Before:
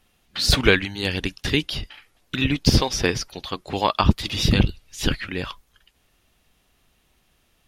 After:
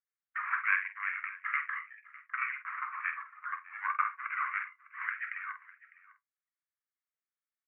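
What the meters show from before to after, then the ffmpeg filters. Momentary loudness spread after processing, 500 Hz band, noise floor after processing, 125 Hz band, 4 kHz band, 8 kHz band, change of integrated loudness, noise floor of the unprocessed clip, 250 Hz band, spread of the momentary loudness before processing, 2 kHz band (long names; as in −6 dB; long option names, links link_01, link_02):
11 LU, below −40 dB, below −85 dBFS, below −40 dB, below −40 dB, below −40 dB, −12.5 dB, −65 dBFS, below −40 dB, 13 LU, −5.0 dB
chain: -filter_complex "[0:a]aeval=exprs='if(lt(val(0),0),0.708*val(0),val(0))':channel_layout=same,afftdn=noise_reduction=34:noise_floor=-39,asplit=2[link_01][link_02];[link_02]acompressor=threshold=-34dB:ratio=6,volume=1dB[link_03];[link_01][link_03]amix=inputs=2:normalize=0,acrusher=samples=9:mix=1:aa=0.000001,asoftclip=type=tanh:threshold=-4dB,asuperpass=centerf=1600:order=12:qfactor=1.3,asplit=2[link_04][link_05];[link_05]adelay=48,volume=-9.5dB[link_06];[link_04][link_06]amix=inputs=2:normalize=0,aecho=1:1:604:0.1,flanger=delay=8.7:depth=2.7:regen=-59:speed=0.94:shape=sinusoidal"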